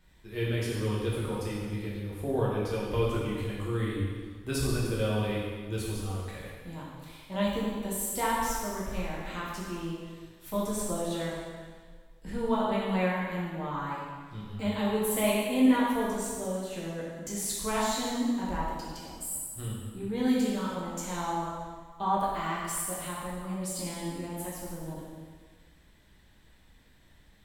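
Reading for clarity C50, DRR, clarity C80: −0.5 dB, −6.5 dB, 1.0 dB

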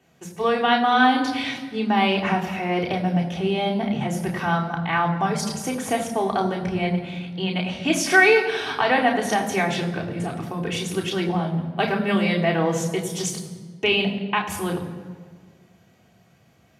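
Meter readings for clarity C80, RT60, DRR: 10.0 dB, 1.6 s, −1.5 dB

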